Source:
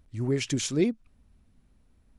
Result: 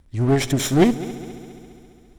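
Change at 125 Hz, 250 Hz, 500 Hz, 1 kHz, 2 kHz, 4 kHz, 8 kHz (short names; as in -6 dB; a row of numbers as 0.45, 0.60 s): +10.0, +9.0, +8.5, +23.0, +9.0, +6.0, +5.5 dB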